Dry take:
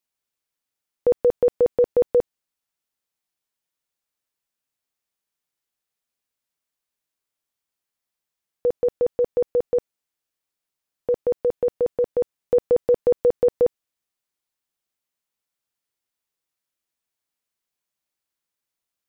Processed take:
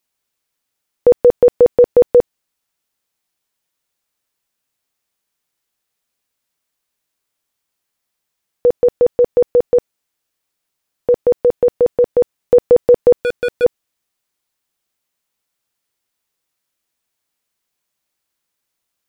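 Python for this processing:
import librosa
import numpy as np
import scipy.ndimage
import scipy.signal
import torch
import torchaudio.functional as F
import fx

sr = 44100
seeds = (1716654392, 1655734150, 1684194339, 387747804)

y = fx.overload_stage(x, sr, gain_db=23.5, at=(13.16, 13.63), fade=0.02)
y = F.gain(torch.from_numpy(y), 8.5).numpy()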